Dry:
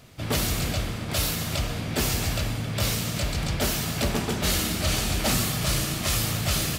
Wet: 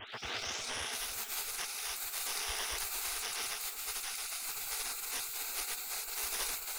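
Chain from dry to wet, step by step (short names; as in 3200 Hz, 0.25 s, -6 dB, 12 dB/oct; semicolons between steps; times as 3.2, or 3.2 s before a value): tape start at the beginning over 1.10 s; ripple EQ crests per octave 1.2, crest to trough 12 dB; pre-echo 0.217 s -13.5 dB; in parallel at -10.5 dB: wavefolder -26.5 dBFS; on the sum: limiter -17.5 dBFS, peak gain reduction 6.5 dB; spectral gate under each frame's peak -25 dB weak; resonant low shelf 110 Hz +14 dB, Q 1.5; on a send: split-band echo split 1500 Hz, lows 0.349 s, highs 0.544 s, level -11.5 dB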